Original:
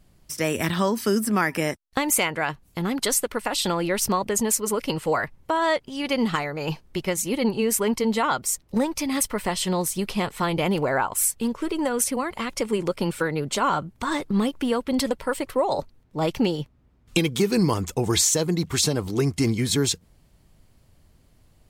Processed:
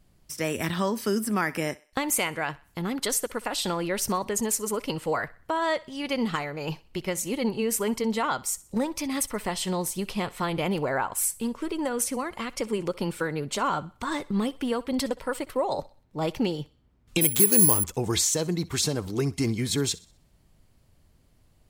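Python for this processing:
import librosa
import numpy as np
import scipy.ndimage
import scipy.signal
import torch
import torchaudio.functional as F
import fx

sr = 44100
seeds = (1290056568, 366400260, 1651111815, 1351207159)

y = fx.echo_thinned(x, sr, ms=63, feedback_pct=41, hz=440.0, wet_db=-20.0)
y = fx.resample_bad(y, sr, factor=4, down='none', up='zero_stuff', at=(17.21, 17.84))
y = y * librosa.db_to_amplitude(-4.0)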